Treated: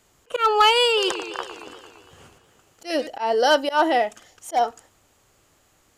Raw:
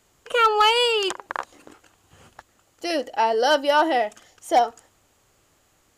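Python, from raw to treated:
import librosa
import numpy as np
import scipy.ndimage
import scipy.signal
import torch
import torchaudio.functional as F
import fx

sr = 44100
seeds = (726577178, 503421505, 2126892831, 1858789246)

y = fx.auto_swell(x, sr, attack_ms=125.0)
y = fx.echo_warbled(y, sr, ms=114, feedback_pct=71, rate_hz=2.8, cents=191, wet_db=-11.5, at=(0.85, 3.07))
y = F.gain(torch.from_numpy(y), 1.5).numpy()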